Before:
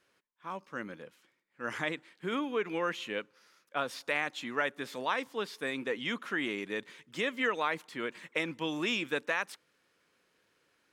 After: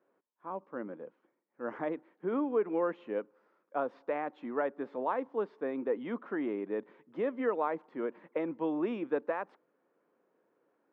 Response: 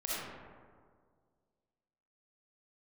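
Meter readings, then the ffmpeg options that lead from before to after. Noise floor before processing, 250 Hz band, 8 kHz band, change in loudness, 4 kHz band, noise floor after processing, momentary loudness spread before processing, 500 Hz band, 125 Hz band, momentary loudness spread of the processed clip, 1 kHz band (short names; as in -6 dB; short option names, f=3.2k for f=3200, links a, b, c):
-74 dBFS, +2.5 dB, under -30 dB, -1.0 dB, under -20 dB, -78 dBFS, 11 LU, +3.5 dB, -4.5 dB, 11 LU, -1.0 dB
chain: -af "asuperpass=centerf=460:order=4:qfactor=0.65,volume=3.5dB"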